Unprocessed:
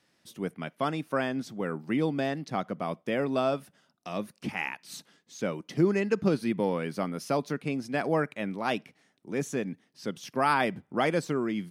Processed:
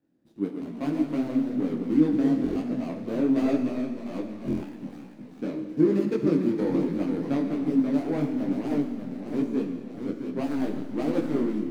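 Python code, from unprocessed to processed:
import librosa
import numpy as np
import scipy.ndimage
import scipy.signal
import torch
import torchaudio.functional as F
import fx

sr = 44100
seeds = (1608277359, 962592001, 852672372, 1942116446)

y = scipy.ndimage.median_filter(x, 41, mode='constant')
y = fx.peak_eq(y, sr, hz=290.0, db=14.0, octaves=0.52)
y = fx.rev_schroeder(y, sr, rt60_s=2.0, comb_ms=26, drr_db=5.5)
y = fx.echo_pitch(y, sr, ms=99, semitones=-1, count=3, db_per_echo=-6.0)
y = fx.buffer_glitch(y, sr, at_s=(2.42, 4.46), block=1024, repeats=5)
y = fx.detune_double(y, sr, cents=40)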